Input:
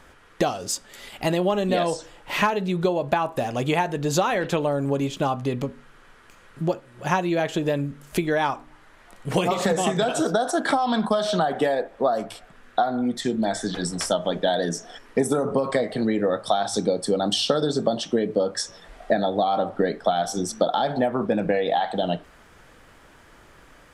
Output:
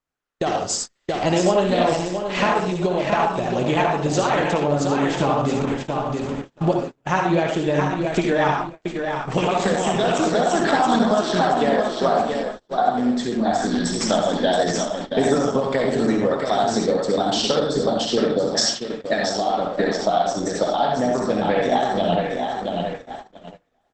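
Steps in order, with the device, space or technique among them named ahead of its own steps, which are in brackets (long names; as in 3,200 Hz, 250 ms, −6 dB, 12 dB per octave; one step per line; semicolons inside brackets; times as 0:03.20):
0:18.52–0:19.23: meter weighting curve D
repeating echo 675 ms, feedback 41%, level −6 dB
speakerphone in a meeting room (convolution reverb RT60 0.45 s, pre-delay 55 ms, DRR 1 dB; automatic gain control gain up to 10 dB; noise gate −22 dBFS, range −33 dB; level −4.5 dB; Opus 12 kbit/s 48,000 Hz)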